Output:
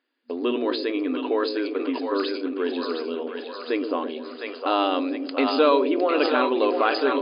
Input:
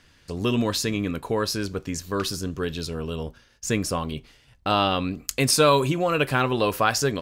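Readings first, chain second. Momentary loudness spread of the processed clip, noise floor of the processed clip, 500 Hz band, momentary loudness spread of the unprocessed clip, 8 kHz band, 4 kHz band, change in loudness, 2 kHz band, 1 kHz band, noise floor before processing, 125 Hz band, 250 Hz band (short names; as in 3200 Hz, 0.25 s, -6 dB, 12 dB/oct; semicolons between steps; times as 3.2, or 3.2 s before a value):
10 LU, -38 dBFS, +2.5 dB, 13 LU, under -40 dB, -3.5 dB, 0.0 dB, -1.5 dB, +0.5 dB, -58 dBFS, under -30 dB, +2.0 dB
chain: on a send: split-band echo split 510 Hz, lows 0.123 s, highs 0.708 s, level -6.5 dB; on the sum: gate with hold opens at -26 dBFS; tilt -2 dB/oct; in parallel at +2.5 dB: compressor, threshold -26 dBFS, peak gain reduction 14 dB; on the sum: FFT band-pass 240–5000 Hz; sustainer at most 74 dB/s; gain -4 dB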